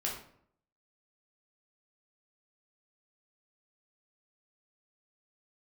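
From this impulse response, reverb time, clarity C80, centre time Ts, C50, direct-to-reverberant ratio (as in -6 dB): 0.65 s, 9.0 dB, 35 ms, 4.5 dB, -3.5 dB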